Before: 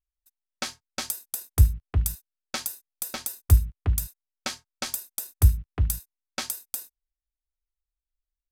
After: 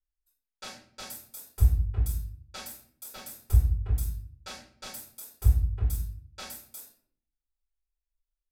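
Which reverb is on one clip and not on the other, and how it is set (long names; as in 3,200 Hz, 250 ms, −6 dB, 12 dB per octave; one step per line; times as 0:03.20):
rectangular room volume 70 cubic metres, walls mixed, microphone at 4 metres
level −23 dB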